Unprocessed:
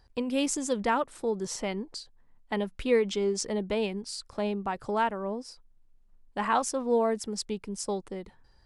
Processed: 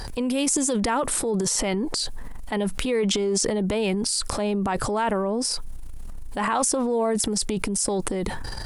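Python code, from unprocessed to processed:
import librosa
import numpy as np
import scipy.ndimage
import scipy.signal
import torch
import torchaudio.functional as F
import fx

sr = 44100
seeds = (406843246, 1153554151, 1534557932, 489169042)

y = fx.peak_eq(x, sr, hz=9900.0, db=10.5, octaves=0.84)
y = fx.transient(y, sr, attack_db=-5, sustain_db=10)
y = fx.env_flatten(y, sr, amount_pct=70)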